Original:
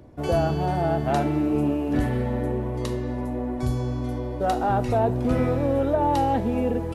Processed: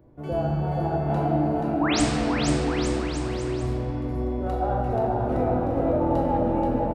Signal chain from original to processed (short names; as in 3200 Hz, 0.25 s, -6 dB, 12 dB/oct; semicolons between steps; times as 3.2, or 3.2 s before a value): bell 7000 Hz -12.5 dB 2.8 oct; painted sound rise, 1.79–2.02, 620–9800 Hz -22 dBFS; bouncing-ball echo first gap 0.48 s, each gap 0.8×, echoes 5; shoebox room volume 220 m³, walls hard, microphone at 0.64 m; gain -7.5 dB